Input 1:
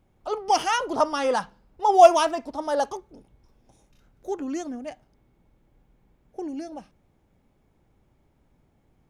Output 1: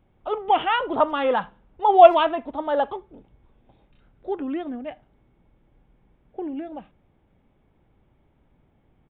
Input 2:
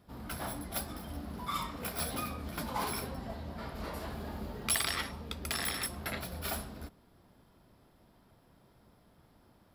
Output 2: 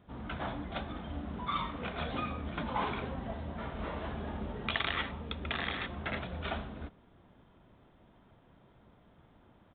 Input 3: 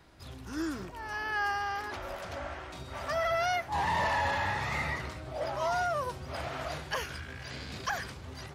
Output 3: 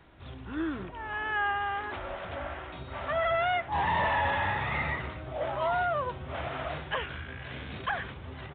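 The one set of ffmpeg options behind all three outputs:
-filter_complex "[0:a]aresample=8000,aresample=44100,asplit=2[s0][s1];[s1]adelay=80,highpass=300,lowpass=3400,asoftclip=type=hard:threshold=0.237,volume=0.0447[s2];[s0][s2]amix=inputs=2:normalize=0,volume=1.26"

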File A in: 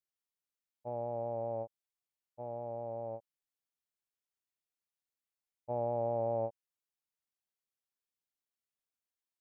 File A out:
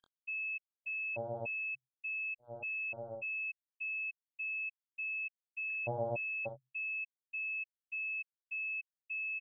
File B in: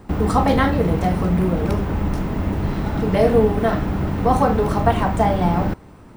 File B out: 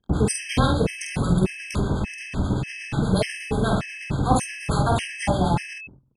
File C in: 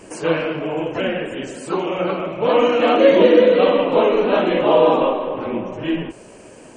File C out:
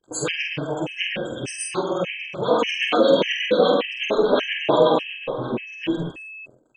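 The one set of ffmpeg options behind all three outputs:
-filter_complex "[0:a]anlmdn=0.631,agate=range=0.0562:threshold=0.00794:ratio=16:detection=peak,equalizer=f=130:t=o:w=0.22:g=13,crystalizer=i=5:c=0,acrossover=split=1000[s0][s1];[s0]aeval=exprs='val(0)*(1-1/2+1/2*cos(2*PI*8.3*n/s))':c=same[s2];[s1]aeval=exprs='val(0)*(1-1/2-1/2*cos(2*PI*8.3*n/s))':c=same[s3];[s2][s3]amix=inputs=2:normalize=0,aeval=exprs='val(0)+0.0158*sin(2*PI*2600*n/s)':c=same,asplit=2[s4][s5];[s5]aecho=0:1:48|71:0.631|0.282[s6];[s4][s6]amix=inputs=2:normalize=0,aresample=22050,aresample=44100,afftfilt=real='re*gt(sin(2*PI*1.7*pts/sr)*(1-2*mod(floor(b*sr/1024/1600),2)),0)':imag='im*gt(sin(2*PI*1.7*pts/sr)*(1-2*mod(floor(b*sr/1024/1600),2)),0)':win_size=1024:overlap=0.75"

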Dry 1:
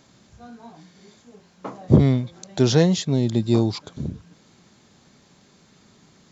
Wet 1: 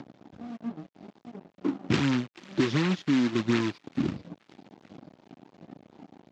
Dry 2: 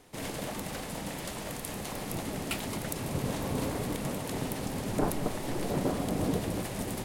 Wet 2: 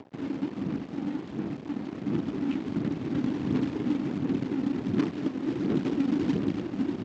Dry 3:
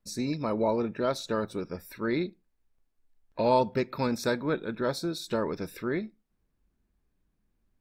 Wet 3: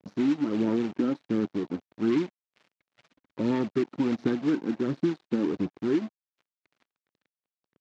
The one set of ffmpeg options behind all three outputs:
-filter_complex "[0:a]lowshelf=f=450:t=q:w=3:g=13,aresample=16000,acrusher=bits=5:mode=log:mix=0:aa=0.000001,aresample=44100,aphaser=in_gain=1:out_gain=1:delay=3.9:decay=0.45:speed=1.4:type=sinusoidal,acrossover=split=520|1100[s0][s1][s2];[s0]acompressor=threshold=0.2:ratio=10[s3];[s1]aeval=exprs='0.0708*(abs(mod(val(0)/0.0708+3,4)-2)-1)':c=same[s4];[s2]aecho=1:1:434|868|1302|1736:0.168|0.0672|0.0269|0.0107[s5];[s3][s4][s5]amix=inputs=3:normalize=0,acompressor=mode=upward:threshold=0.0631:ratio=2.5,aeval=exprs='sgn(val(0))*max(abs(val(0))-0.0266,0)':c=same,highpass=140,lowpass=3000,volume=0.422"

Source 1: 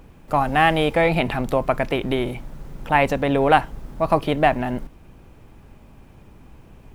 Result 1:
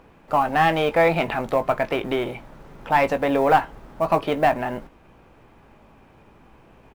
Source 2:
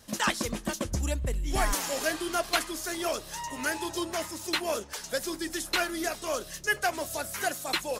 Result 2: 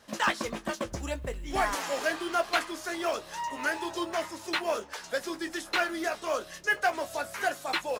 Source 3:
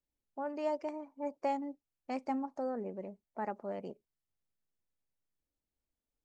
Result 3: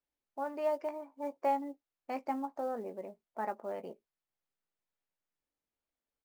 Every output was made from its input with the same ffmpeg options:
-filter_complex "[0:a]asplit=2[s0][s1];[s1]highpass=f=720:p=1,volume=5.62,asoftclip=type=tanh:threshold=0.891[s2];[s0][s2]amix=inputs=2:normalize=0,lowpass=f=1600:p=1,volume=0.501,acrusher=bits=8:mode=log:mix=0:aa=0.000001,asplit=2[s3][s4];[s4]adelay=18,volume=0.316[s5];[s3][s5]amix=inputs=2:normalize=0,volume=0.562"

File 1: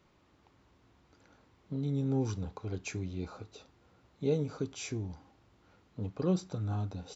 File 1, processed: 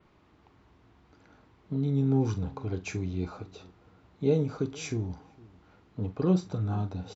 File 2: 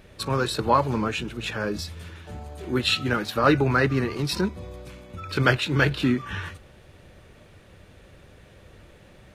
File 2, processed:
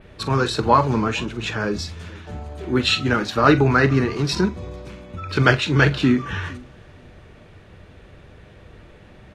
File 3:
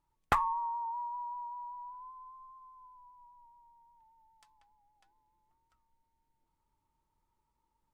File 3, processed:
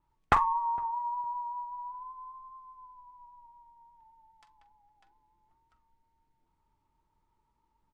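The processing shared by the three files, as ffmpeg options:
-filter_complex "[0:a]aemphasis=mode=reproduction:type=50fm,bandreject=f=540:w=12,adynamicequalizer=threshold=0.00224:dfrequency=6400:dqfactor=1.4:tfrequency=6400:tqfactor=1.4:attack=5:release=100:ratio=0.375:range=4:mode=boostabove:tftype=bell,asplit=2[s0][s1];[s1]adelay=44,volume=0.211[s2];[s0][s2]amix=inputs=2:normalize=0,asplit=2[s3][s4];[s4]adelay=460,lowpass=f=840:p=1,volume=0.0794,asplit=2[s5][s6];[s6]adelay=460,lowpass=f=840:p=1,volume=0.16[s7];[s5][s7]amix=inputs=2:normalize=0[s8];[s3][s8]amix=inputs=2:normalize=0,volume=1.68"

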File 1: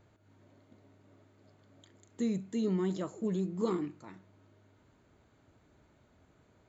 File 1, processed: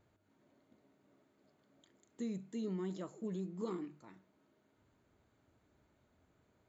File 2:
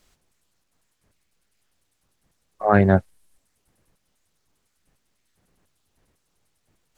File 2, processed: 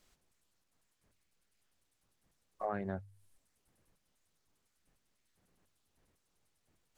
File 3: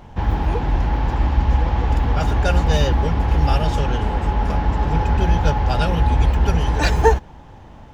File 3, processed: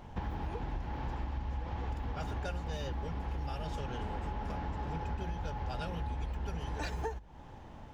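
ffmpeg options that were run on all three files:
-af "bandreject=f=50:t=h:w=6,bandreject=f=100:t=h:w=6,bandreject=f=150:t=h:w=6,acompressor=threshold=0.0501:ratio=10,volume=0.422"

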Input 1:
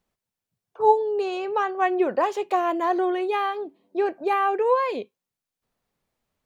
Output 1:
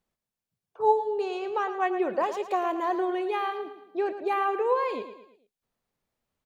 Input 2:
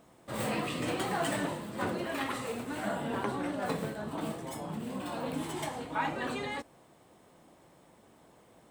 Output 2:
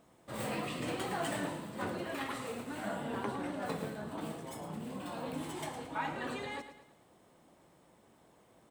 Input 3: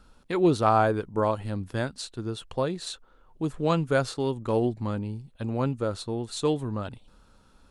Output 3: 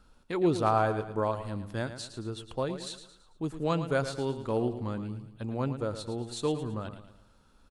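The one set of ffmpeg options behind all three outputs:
-af "aecho=1:1:111|222|333|444:0.282|0.121|0.0521|0.0224,volume=0.596"

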